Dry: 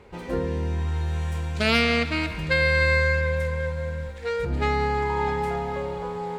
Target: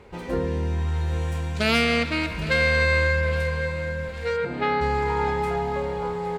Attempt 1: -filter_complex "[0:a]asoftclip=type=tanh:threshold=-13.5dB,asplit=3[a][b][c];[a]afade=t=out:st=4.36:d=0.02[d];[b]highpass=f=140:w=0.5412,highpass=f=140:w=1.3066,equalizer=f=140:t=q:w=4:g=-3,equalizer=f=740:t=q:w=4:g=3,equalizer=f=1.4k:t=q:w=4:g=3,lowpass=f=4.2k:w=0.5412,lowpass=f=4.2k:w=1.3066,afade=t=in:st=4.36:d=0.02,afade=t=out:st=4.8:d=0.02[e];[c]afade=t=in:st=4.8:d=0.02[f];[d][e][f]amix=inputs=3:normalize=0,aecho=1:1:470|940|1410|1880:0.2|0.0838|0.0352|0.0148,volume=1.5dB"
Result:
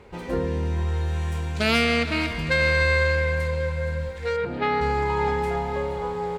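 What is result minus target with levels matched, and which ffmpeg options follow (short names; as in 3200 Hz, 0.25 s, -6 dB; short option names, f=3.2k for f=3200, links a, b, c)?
echo 0.341 s early
-filter_complex "[0:a]asoftclip=type=tanh:threshold=-13.5dB,asplit=3[a][b][c];[a]afade=t=out:st=4.36:d=0.02[d];[b]highpass=f=140:w=0.5412,highpass=f=140:w=1.3066,equalizer=f=140:t=q:w=4:g=-3,equalizer=f=740:t=q:w=4:g=3,equalizer=f=1.4k:t=q:w=4:g=3,lowpass=f=4.2k:w=0.5412,lowpass=f=4.2k:w=1.3066,afade=t=in:st=4.36:d=0.02,afade=t=out:st=4.8:d=0.02[e];[c]afade=t=in:st=4.8:d=0.02[f];[d][e][f]amix=inputs=3:normalize=0,aecho=1:1:811|1622|2433|3244:0.2|0.0838|0.0352|0.0148,volume=1.5dB"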